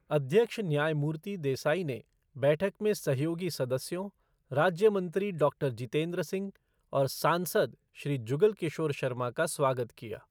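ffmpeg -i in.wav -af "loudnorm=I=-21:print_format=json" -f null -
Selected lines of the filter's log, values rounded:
"input_i" : "-30.8",
"input_tp" : "-13.0",
"input_lra" : "1.2",
"input_thresh" : "-41.0",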